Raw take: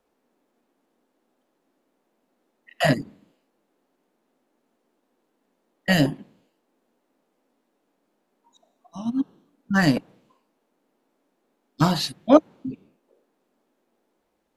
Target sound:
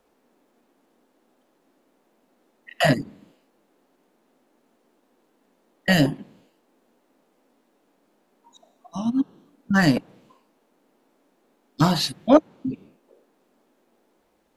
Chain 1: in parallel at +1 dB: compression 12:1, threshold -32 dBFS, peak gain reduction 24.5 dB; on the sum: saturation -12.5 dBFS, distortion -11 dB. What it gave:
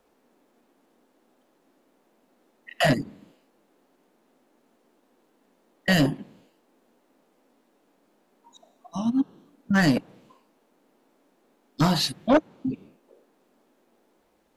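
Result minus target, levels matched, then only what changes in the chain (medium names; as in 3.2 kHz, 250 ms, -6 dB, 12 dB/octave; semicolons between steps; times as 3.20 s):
saturation: distortion +13 dB
change: saturation -2 dBFS, distortion -24 dB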